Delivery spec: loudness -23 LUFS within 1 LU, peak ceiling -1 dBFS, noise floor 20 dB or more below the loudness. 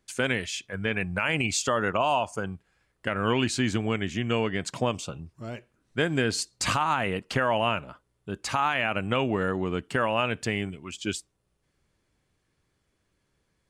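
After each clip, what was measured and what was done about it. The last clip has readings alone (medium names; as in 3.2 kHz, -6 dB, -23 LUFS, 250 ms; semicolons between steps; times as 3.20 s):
loudness -27.5 LUFS; peak level -13.5 dBFS; loudness target -23.0 LUFS
-> trim +4.5 dB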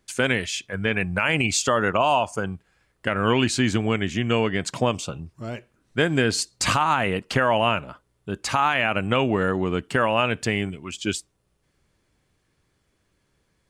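loudness -23.0 LUFS; peak level -9.0 dBFS; noise floor -70 dBFS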